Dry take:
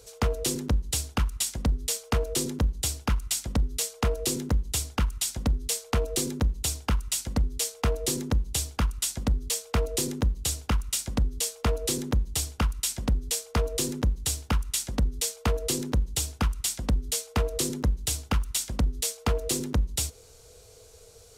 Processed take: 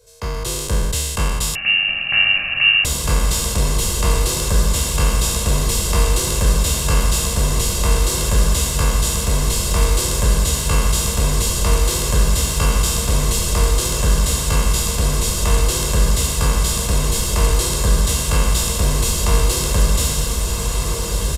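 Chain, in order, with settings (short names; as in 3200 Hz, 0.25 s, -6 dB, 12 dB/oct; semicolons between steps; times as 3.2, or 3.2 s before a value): spectral trails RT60 1.79 s; comb 1.9 ms, depth 69%; AGC; on a send: diffused feedback echo 1.468 s, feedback 63%, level -4 dB; 1.55–2.85 on the sum: inverted band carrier 2800 Hz; gain -6.5 dB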